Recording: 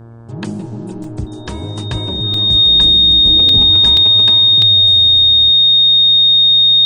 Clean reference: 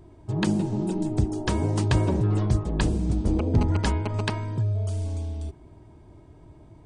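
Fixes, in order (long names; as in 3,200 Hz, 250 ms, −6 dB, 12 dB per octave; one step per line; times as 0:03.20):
hum removal 115.4 Hz, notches 15
notch filter 3,700 Hz, Q 30
repair the gap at 0:01.04/0:02.34/0:03.49/0:03.97/0:04.62, 2.2 ms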